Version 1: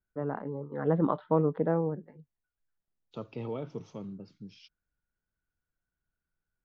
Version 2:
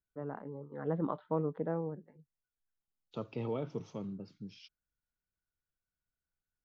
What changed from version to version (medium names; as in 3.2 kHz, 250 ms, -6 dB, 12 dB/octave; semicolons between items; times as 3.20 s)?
first voice -7.5 dB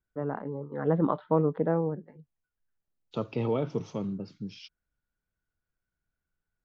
first voice +8.5 dB; second voice +8.0 dB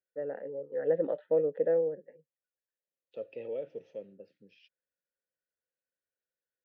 first voice +7.0 dB; master: add vowel filter e